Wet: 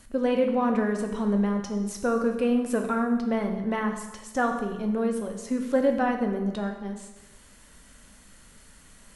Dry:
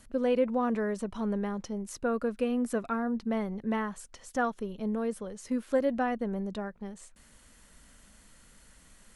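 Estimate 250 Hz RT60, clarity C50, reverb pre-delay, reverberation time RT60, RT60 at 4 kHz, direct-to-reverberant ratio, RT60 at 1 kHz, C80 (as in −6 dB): 1.1 s, 6.5 dB, 5 ms, 1.1 s, 1.0 s, 3.5 dB, 1.1 s, 8.5 dB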